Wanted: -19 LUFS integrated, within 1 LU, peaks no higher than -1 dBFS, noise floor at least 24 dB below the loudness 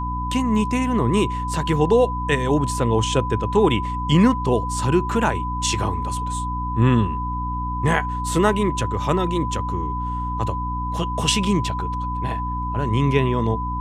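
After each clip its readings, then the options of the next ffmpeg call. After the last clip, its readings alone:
hum 60 Hz; highest harmonic 300 Hz; hum level -25 dBFS; steady tone 1 kHz; tone level -26 dBFS; loudness -21.5 LUFS; peak level -3.5 dBFS; loudness target -19.0 LUFS
-> -af "bandreject=f=60:t=h:w=4,bandreject=f=120:t=h:w=4,bandreject=f=180:t=h:w=4,bandreject=f=240:t=h:w=4,bandreject=f=300:t=h:w=4"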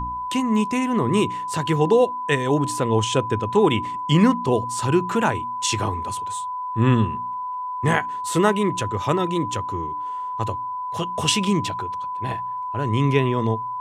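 hum not found; steady tone 1 kHz; tone level -26 dBFS
-> -af "bandreject=f=1000:w=30"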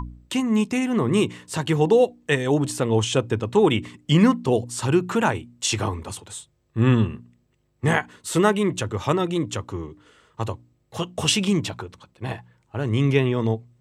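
steady tone not found; loudness -22.5 LUFS; peak level -5.0 dBFS; loudness target -19.0 LUFS
-> -af "volume=1.5"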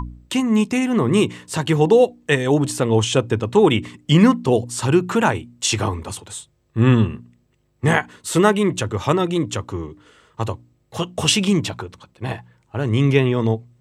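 loudness -19.0 LUFS; peak level -1.5 dBFS; noise floor -63 dBFS

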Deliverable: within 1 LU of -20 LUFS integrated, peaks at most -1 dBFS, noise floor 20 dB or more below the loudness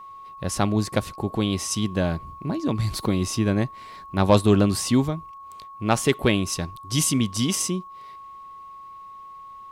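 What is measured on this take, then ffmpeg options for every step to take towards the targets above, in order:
steady tone 1.1 kHz; tone level -39 dBFS; loudness -24.0 LUFS; peak level -6.0 dBFS; loudness target -20.0 LUFS
-> -af "bandreject=f=1100:w=30"
-af "volume=1.58"

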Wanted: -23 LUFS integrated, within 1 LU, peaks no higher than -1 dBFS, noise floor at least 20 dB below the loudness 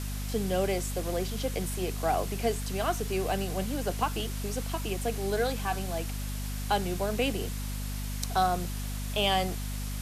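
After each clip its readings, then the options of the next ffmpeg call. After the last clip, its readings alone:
hum 50 Hz; highest harmonic 250 Hz; hum level -32 dBFS; noise floor -34 dBFS; noise floor target -51 dBFS; loudness -31.0 LUFS; peak level -14.0 dBFS; loudness target -23.0 LUFS
-> -af "bandreject=f=50:t=h:w=4,bandreject=f=100:t=h:w=4,bandreject=f=150:t=h:w=4,bandreject=f=200:t=h:w=4,bandreject=f=250:t=h:w=4"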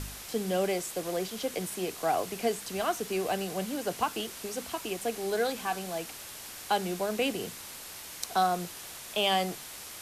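hum not found; noise floor -44 dBFS; noise floor target -52 dBFS
-> -af "afftdn=nr=8:nf=-44"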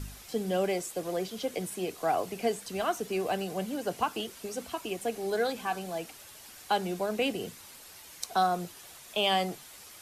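noise floor -50 dBFS; noise floor target -52 dBFS
-> -af "afftdn=nr=6:nf=-50"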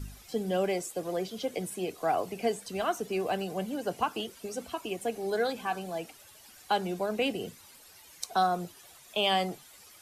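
noise floor -55 dBFS; loudness -32.0 LUFS; peak level -15.0 dBFS; loudness target -23.0 LUFS
-> -af "volume=2.82"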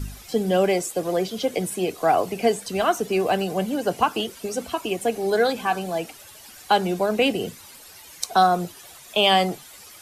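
loudness -23.0 LUFS; peak level -6.0 dBFS; noise floor -46 dBFS

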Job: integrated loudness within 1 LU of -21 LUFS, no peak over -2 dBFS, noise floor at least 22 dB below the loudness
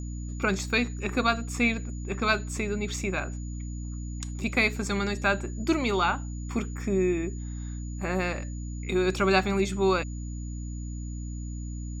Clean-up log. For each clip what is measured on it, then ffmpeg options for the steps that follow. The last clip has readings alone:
hum 60 Hz; highest harmonic 300 Hz; hum level -32 dBFS; steady tone 6.9 kHz; tone level -49 dBFS; loudness -28.5 LUFS; peak level -9.0 dBFS; loudness target -21.0 LUFS
-> -af "bandreject=f=60:t=h:w=4,bandreject=f=120:t=h:w=4,bandreject=f=180:t=h:w=4,bandreject=f=240:t=h:w=4,bandreject=f=300:t=h:w=4"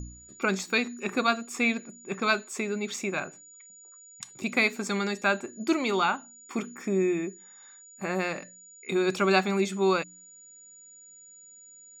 hum not found; steady tone 6.9 kHz; tone level -49 dBFS
-> -af "bandreject=f=6900:w=30"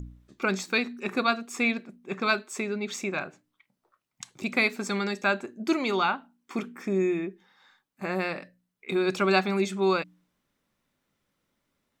steady tone not found; loudness -28.0 LUFS; peak level -9.5 dBFS; loudness target -21.0 LUFS
-> -af "volume=2.24"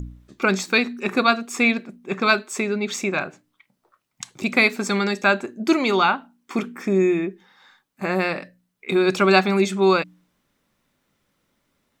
loudness -21.0 LUFS; peak level -2.5 dBFS; noise floor -73 dBFS

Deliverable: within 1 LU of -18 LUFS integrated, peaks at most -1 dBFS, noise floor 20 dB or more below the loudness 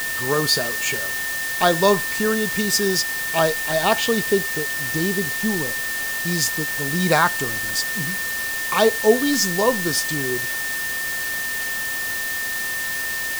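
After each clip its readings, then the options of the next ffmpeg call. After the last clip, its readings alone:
steady tone 1.8 kHz; tone level -25 dBFS; noise floor -26 dBFS; noise floor target -41 dBFS; loudness -20.5 LUFS; peak level -3.0 dBFS; loudness target -18.0 LUFS
-> -af "bandreject=f=1800:w=30"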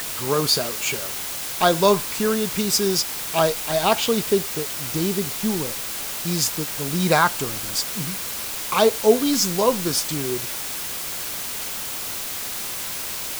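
steady tone not found; noise floor -30 dBFS; noise floor target -42 dBFS
-> -af "afftdn=nr=12:nf=-30"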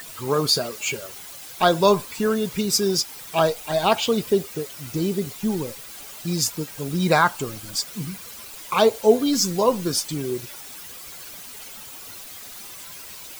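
noise floor -40 dBFS; noise floor target -43 dBFS
-> -af "afftdn=nr=6:nf=-40"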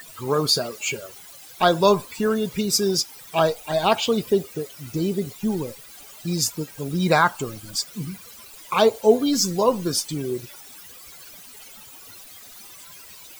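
noise floor -44 dBFS; loudness -22.5 LUFS; peak level -4.0 dBFS; loudness target -18.0 LUFS
-> -af "volume=1.68,alimiter=limit=0.891:level=0:latency=1"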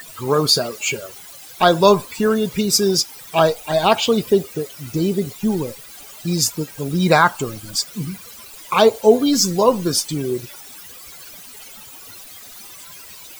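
loudness -18.0 LUFS; peak level -1.0 dBFS; noise floor -40 dBFS

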